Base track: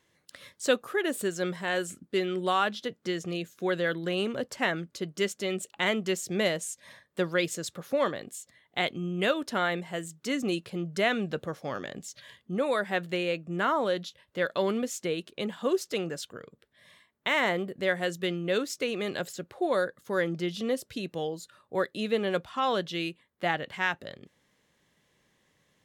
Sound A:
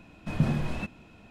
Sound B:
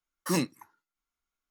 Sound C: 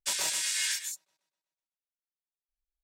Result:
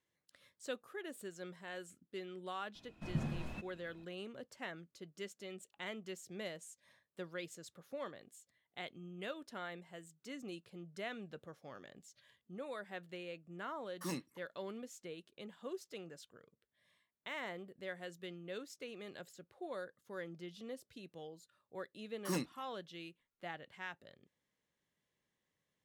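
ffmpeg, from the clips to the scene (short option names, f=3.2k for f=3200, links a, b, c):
-filter_complex "[2:a]asplit=2[a][b];[0:a]volume=-17.5dB[c];[1:a]atrim=end=1.3,asetpts=PTS-STARTPTS,volume=-12dB,afade=t=in:d=0.004:c=hsin,afade=t=out:st=1.296:d=0.004:c=hsin,adelay=2750[d];[a]atrim=end=1.5,asetpts=PTS-STARTPTS,volume=-13.5dB,afade=t=in:d=0.004:c=hsin,afade=t=out:st=1.496:d=0.004:c=hsin,adelay=13750[e];[b]atrim=end=1.5,asetpts=PTS-STARTPTS,volume=-10.5dB,afade=t=in:d=0.004:c=hsin,afade=t=out:st=1.496:d=0.004:c=hsin,adelay=21990[f];[c][d][e][f]amix=inputs=4:normalize=0"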